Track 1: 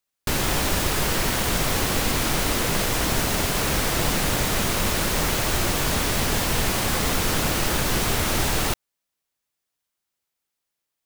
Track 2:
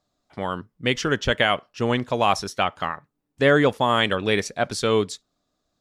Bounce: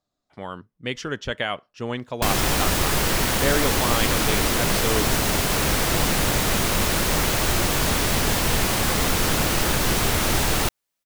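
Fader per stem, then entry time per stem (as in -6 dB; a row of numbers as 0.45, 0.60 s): +1.5, -6.5 dB; 1.95, 0.00 s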